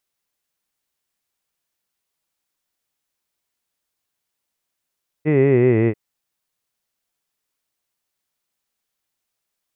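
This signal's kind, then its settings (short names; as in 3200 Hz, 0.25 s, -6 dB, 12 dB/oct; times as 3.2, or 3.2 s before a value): formant-synthesis vowel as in hid, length 0.69 s, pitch 150 Hz, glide -6 st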